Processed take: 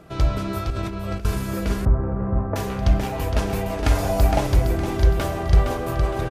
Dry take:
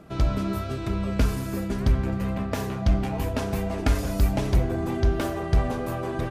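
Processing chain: bell 230 Hz -8 dB 0.58 oct; feedback echo 0.463 s, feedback 39%, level -6 dB; 0.7–1.25 negative-ratio compressor -32 dBFS, ratio -1; de-hum 67.4 Hz, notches 40; 1.85–2.56 LPF 1300 Hz 24 dB/oct; 3.91–4.47 bell 760 Hz +8.5 dB 0.67 oct; gain +3.5 dB

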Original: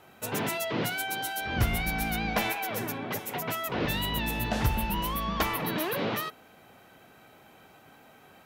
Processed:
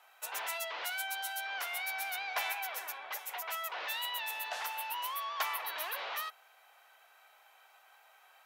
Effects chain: HPF 740 Hz 24 dB/oct; gain -4.5 dB

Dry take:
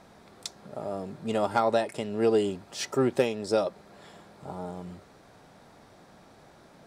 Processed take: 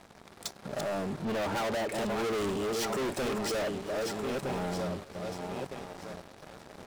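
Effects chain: regenerating reverse delay 0.631 s, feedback 50%, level -9 dB; 1.25–1.91 LPF 2800 Hz; sample leveller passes 3; soft clip -30 dBFS, distortion -5 dB; echo 1.069 s -23 dB

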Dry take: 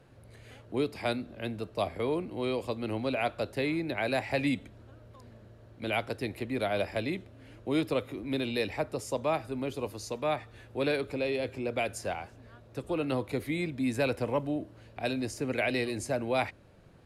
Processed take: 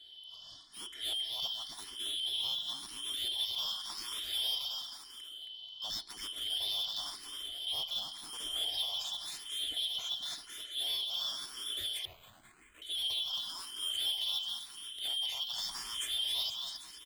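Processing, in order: four-band scrambler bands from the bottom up 3412; comb 2.9 ms, depth 54%; in parallel at +2 dB: level quantiser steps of 20 dB; on the sum: soft clip -31 dBFS, distortion -7 dB; on a send: bouncing-ball echo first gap 0.27 s, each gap 0.8×, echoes 5; 12.05–12.82 on the sum: careless resampling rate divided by 8×, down filtered, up hold; endless phaser +0.93 Hz; gain -2 dB

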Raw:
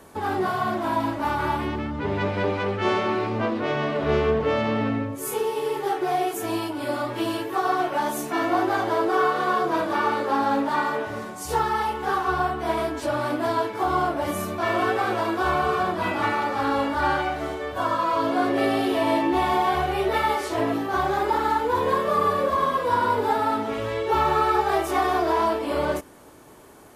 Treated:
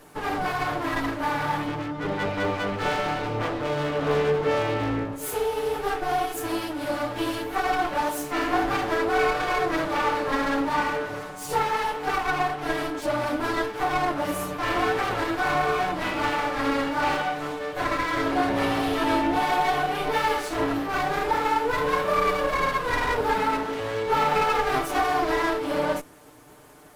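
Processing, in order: minimum comb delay 6.7 ms

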